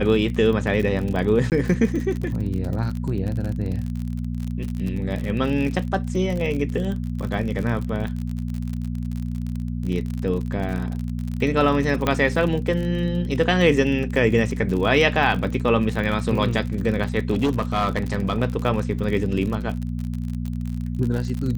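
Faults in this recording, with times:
crackle 48 per s -27 dBFS
hum 60 Hz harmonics 4 -27 dBFS
1.50–1.52 s: dropout 18 ms
12.07 s: pop -7 dBFS
17.31–18.42 s: clipped -15.5 dBFS

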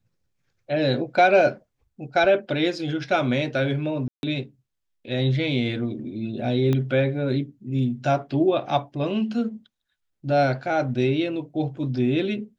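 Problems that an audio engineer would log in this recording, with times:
4.08–4.23 s: dropout 151 ms
6.73 s: pop -13 dBFS

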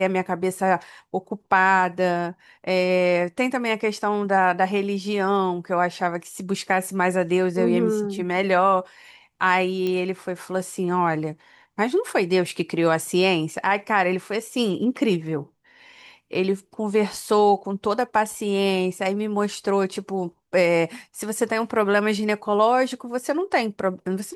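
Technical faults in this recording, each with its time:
9.87 s: pop -15 dBFS

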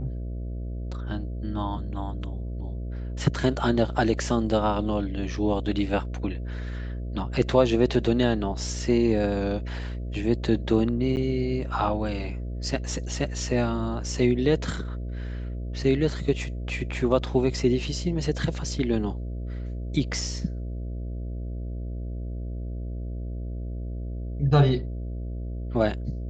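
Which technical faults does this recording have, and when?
buzz 60 Hz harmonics 11 -32 dBFS
11.16–11.17 s: dropout 9.2 ms

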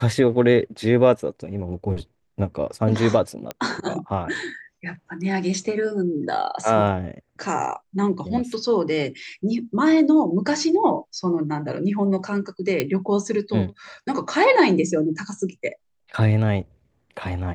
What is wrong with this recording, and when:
3.51 s: pop -14 dBFS
12.80 s: pop -7 dBFS

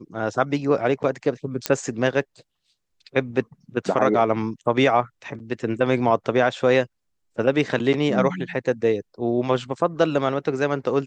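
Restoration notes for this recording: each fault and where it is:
1.66 s: pop -5 dBFS

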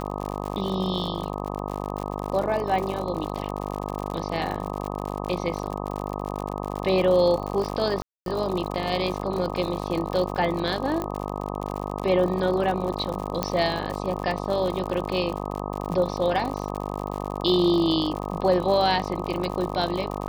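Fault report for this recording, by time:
buzz 50 Hz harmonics 25 -31 dBFS
crackle 71 per s -29 dBFS
8.02–8.26 s: dropout 242 ms
11.02 s: pop -15 dBFS
13.43 s: pop -9 dBFS

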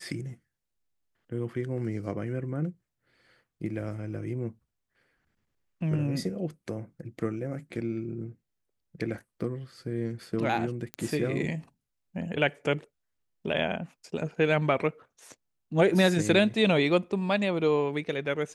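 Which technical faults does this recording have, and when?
10.94 s: pop -19 dBFS

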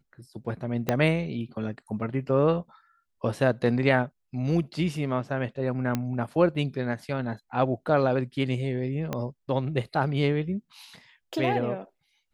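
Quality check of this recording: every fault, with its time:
0.89 s: pop -10 dBFS
5.95 s: pop -13 dBFS
9.13 s: pop -15 dBFS

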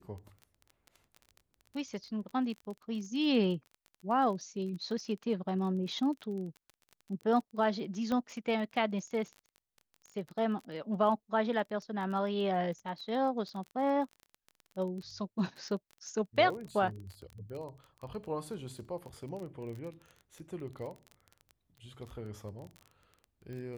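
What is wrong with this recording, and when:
crackle 22 per s -40 dBFS
8.12 s: pop -22 dBFS

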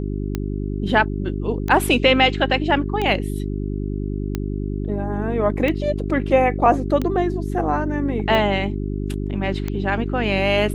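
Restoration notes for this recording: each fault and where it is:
hum 50 Hz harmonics 8 -25 dBFS
tick 45 rpm -11 dBFS

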